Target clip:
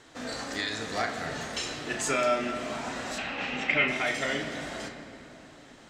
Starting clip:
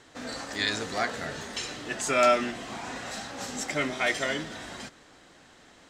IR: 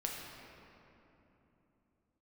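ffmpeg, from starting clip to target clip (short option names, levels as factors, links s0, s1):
-filter_complex "[0:a]alimiter=limit=0.126:level=0:latency=1:release=347,asettb=1/sr,asplit=3[s0][s1][s2];[s0]atrim=end=3.184[s3];[s1]atrim=start=3.18:end=3.88,asetpts=PTS-STARTPTS,afade=t=in:d=0.004:c=qsin,afade=t=out:st=0.696:d=0.004:c=qsin,lowpass=f=2600:t=q:w=5.8[s4];[s2]atrim=start=3.876[s5];[s3][s4]acrossfade=d=0.004:c1=hsin:c2=qsin[s6];[s6][s5]acrossfade=d=0.004:c1=qsin:c2=hsin,asplit=2[s7][s8];[1:a]atrim=start_sample=2205,lowpass=6900,adelay=36[s9];[s8][s9]afir=irnorm=-1:irlink=0,volume=0.531[s10];[s7][s10]amix=inputs=2:normalize=0"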